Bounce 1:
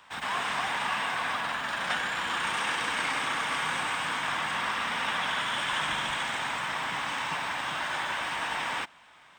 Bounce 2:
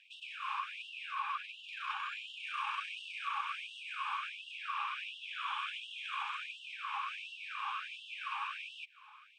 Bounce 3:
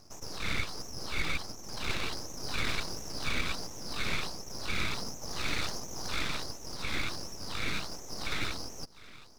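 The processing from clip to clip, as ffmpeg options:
-filter_complex "[0:a]asplit=3[s0][s1][s2];[s0]bandpass=f=730:t=q:w=8,volume=1[s3];[s1]bandpass=f=1090:t=q:w=8,volume=0.501[s4];[s2]bandpass=f=2440:t=q:w=8,volume=0.355[s5];[s3][s4][s5]amix=inputs=3:normalize=0,acompressor=threshold=0.00398:ratio=2.5,afftfilt=real='re*gte(b*sr/1024,800*pow(2700/800,0.5+0.5*sin(2*PI*1.4*pts/sr)))':imag='im*gte(b*sr/1024,800*pow(2700/800,0.5+0.5*sin(2*PI*1.4*pts/sr)))':win_size=1024:overlap=0.75,volume=4.22"
-af "aeval=exprs='abs(val(0))':c=same,volume=2.66"

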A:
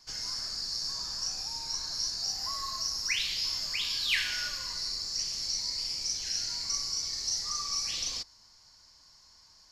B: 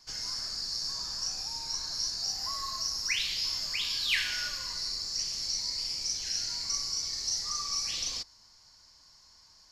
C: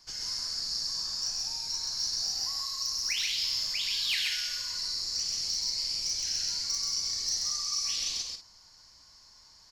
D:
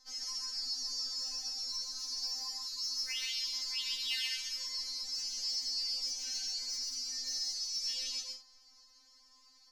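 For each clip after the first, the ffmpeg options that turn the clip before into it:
-af anull
-filter_complex "[0:a]acrossover=split=2200[s0][s1];[s0]acompressor=threshold=0.00282:ratio=6[s2];[s1]asoftclip=type=hard:threshold=0.0631[s3];[s2][s3]amix=inputs=2:normalize=0,aecho=1:1:131.2|183.7:0.708|0.282"
-af "afftfilt=real='re*3.46*eq(mod(b,12),0)':imag='im*3.46*eq(mod(b,12),0)':win_size=2048:overlap=0.75,volume=0.631"

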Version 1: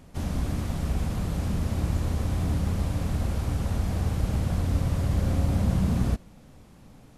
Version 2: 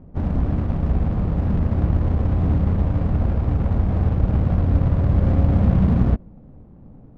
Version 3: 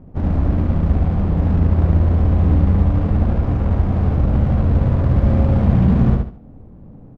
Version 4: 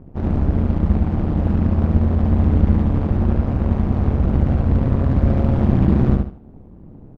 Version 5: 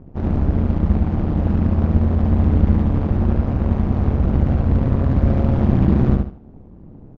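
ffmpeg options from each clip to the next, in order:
-af "adynamicsmooth=sensitivity=2.5:basefreq=550,volume=2.37"
-af "aecho=1:1:72|144|216|288:0.668|0.194|0.0562|0.0163,volume=1.26"
-af "tremolo=f=140:d=0.857,volume=1.33"
-af "aresample=16000,aresample=44100"

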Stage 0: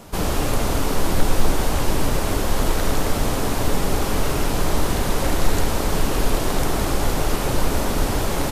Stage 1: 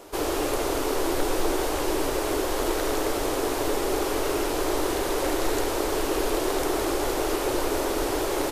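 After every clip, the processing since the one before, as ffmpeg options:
-af "lowshelf=f=260:t=q:w=3:g=-9.5,volume=0.668"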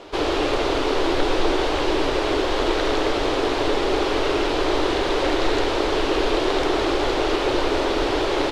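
-af "lowpass=f=3700:t=q:w=1.6,volume=1.68"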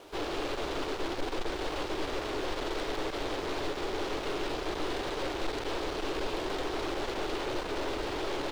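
-af "aeval=exprs='(tanh(14.1*val(0)+0.6)-tanh(0.6))/14.1':c=same,acrusher=bits=7:mix=0:aa=0.5,volume=0.447"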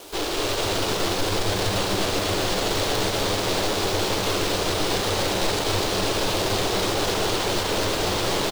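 -filter_complex "[0:a]acrossover=split=2100[s0][s1];[s1]crystalizer=i=3:c=0[s2];[s0][s2]amix=inputs=2:normalize=0,asplit=9[s3][s4][s5][s6][s7][s8][s9][s10][s11];[s4]adelay=246,afreqshift=93,volume=0.668[s12];[s5]adelay=492,afreqshift=186,volume=0.394[s13];[s6]adelay=738,afreqshift=279,volume=0.232[s14];[s7]adelay=984,afreqshift=372,volume=0.138[s15];[s8]adelay=1230,afreqshift=465,volume=0.0813[s16];[s9]adelay=1476,afreqshift=558,volume=0.0479[s17];[s10]adelay=1722,afreqshift=651,volume=0.0282[s18];[s11]adelay=1968,afreqshift=744,volume=0.0166[s19];[s3][s12][s13][s14][s15][s16][s17][s18][s19]amix=inputs=9:normalize=0,volume=2.11"

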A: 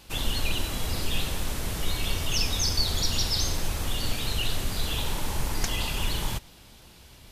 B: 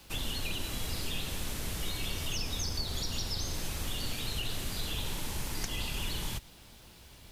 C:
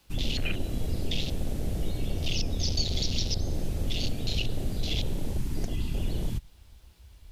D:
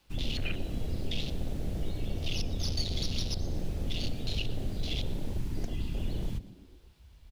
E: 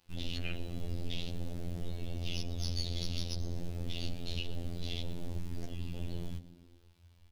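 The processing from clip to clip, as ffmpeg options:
-filter_complex "[0:a]acrossover=split=98|450|1600[s0][s1][s2][s3];[s0]acompressor=threshold=0.0282:ratio=4[s4];[s1]acompressor=threshold=0.0126:ratio=4[s5];[s2]acompressor=threshold=0.00447:ratio=4[s6];[s3]acompressor=threshold=0.0224:ratio=4[s7];[s4][s5][s6][s7]amix=inputs=4:normalize=0,acrusher=bits=9:mix=0:aa=0.000001,volume=0.708"
-af "afwtdn=0.0126,volume=2.51"
-filter_complex "[0:a]acrossover=split=200|5400[s0][s1][s2];[s2]aeval=exprs='max(val(0),0)':c=same[s3];[s0][s1][s3]amix=inputs=3:normalize=0,asplit=5[s4][s5][s6][s7][s8];[s5]adelay=120,afreqshift=84,volume=0.106[s9];[s6]adelay=240,afreqshift=168,volume=0.0531[s10];[s7]adelay=360,afreqshift=252,volume=0.0266[s11];[s8]adelay=480,afreqshift=336,volume=0.0132[s12];[s4][s9][s10][s11][s12]amix=inputs=5:normalize=0,volume=0.668"
-af "afftfilt=real='hypot(re,im)*cos(PI*b)':imag='0':win_size=2048:overlap=0.75,volume=0.891"

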